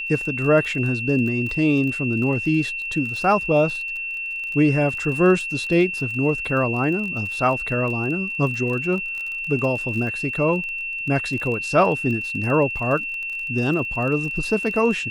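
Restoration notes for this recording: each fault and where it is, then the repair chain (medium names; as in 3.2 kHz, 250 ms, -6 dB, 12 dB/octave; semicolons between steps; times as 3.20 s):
crackle 28 per s -29 dBFS
whine 2.7 kHz -26 dBFS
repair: de-click; band-stop 2.7 kHz, Q 30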